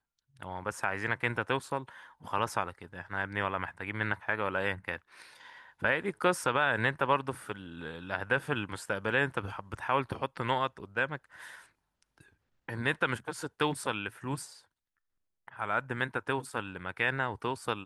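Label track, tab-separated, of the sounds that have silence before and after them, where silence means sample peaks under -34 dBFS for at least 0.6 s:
5.820000	11.160000	sound
12.690000	14.440000	sound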